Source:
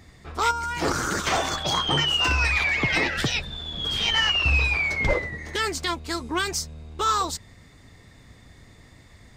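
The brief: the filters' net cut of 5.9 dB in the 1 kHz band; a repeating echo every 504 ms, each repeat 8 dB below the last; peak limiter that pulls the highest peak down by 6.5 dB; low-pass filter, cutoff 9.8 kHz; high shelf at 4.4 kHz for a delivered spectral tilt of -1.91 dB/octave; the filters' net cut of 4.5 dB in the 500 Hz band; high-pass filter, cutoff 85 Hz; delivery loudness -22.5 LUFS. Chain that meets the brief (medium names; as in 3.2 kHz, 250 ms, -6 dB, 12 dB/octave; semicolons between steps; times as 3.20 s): high-pass 85 Hz; low-pass 9.8 kHz; peaking EQ 500 Hz -4 dB; peaking EQ 1 kHz -7.5 dB; treble shelf 4.4 kHz +4 dB; peak limiter -17 dBFS; feedback delay 504 ms, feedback 40%, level -8 dB; trim +2.5 dB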